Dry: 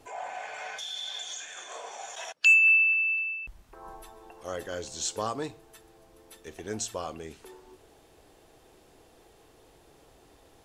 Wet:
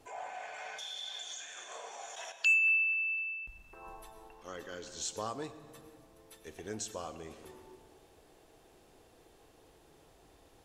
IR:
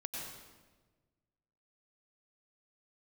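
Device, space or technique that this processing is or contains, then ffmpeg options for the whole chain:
compressed reverb return: -filter_complex "[0:a]asettb=1/sr,asplit=3[a][b][c];[a]atrim=end=4.284[d];[b]atrim=start=4.28:end=4.97,asetpts=PTS-STARTPTS,afade=t=in:d=0.004:c=qsin,afade=t=out:st=0.686:d=0.004:c=qsin,equalizer=f=100:t=o:w=0.67:g=-10,equalizer=f=630:t=o:w=0.67:g=-9,equalizer=f=10k:t=o:w=0.67:g=-11[e];[c]atrim=start=4.966[f];[d][e]acrossfade=d=0.004:c1=hsin:c2=qsin[g];[g][f]acrossfade=d=0.004:c1=qsin:c2=hsin,asplit=2[h][i];[1:a]atrim=start_sample=2205[j];[i][j]afir=irnorm=-1:irlink=0,acompressor=threshold=-38dB:ratio=12,volume=-2.5dB[k];[h][k]amix=inputs=2:normalize=0,volume=-8dB"

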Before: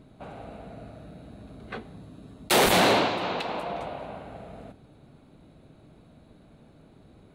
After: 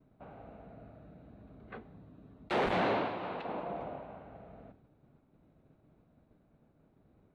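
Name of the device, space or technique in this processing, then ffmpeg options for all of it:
hearing-loss simulation: -filter_complex "[0:a]asettb=1/sr,asplit=3[a][b][c];[a]atrim=end=3.454[d];[b]atrim=start=3.45:end=4.01,asetpts=PTS-STARTPTS,afade=t=in:d=0.004:c=qsin,afade=t=out:st=0.556:d=0.004:c=qsin,equalizer=f=270:w=0.5:g=5.5[e];[c]atrim=start=4.006[f];[d][e]acrossfade=d=0.004:c1=hsin:c2=qsin[g];[g][f]acrossfade=d=0.004:c1=qsin:c2=hsin,lowpass=2.1k,agate=range=-33dB:threshold=-49dB:ratio=3:detection=peak,volume=-9dB"

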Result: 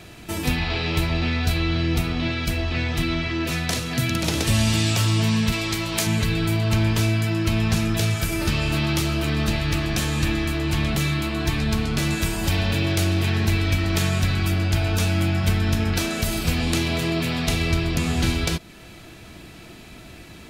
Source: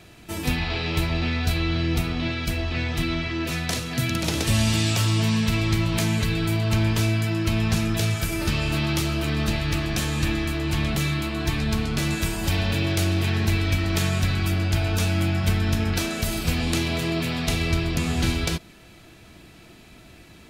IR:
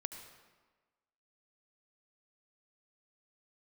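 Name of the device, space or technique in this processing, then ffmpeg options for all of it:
parallel compression: -filter_complex "[0:a]asplit=2[a][b];[b]acompressor=threshold=-35dB:ratio=6,volume=-1dB[c];[a][c]amix=inputs=2:normalize=0,asettb=1/sr,asplit=3[d][e][f];[d]atrim=end=5.524[g];[e]atrim=start=5.52:end=6.07,asetpts=PTS-STARTPTS,afade=t=in:d=0.004:c=qsin,afade=t=out:st=0.546:d=0.004:c=qsin,bass=f=250:g=-10,treble=f=4k:g=5[h];[f]atrim=start=6.066[i];[g][h]acrossfade=d=0.004:c1=hsin:c2=qsin[j];[j][i]acrossfade=d=0.004:c1=qsin:c2=hsin"

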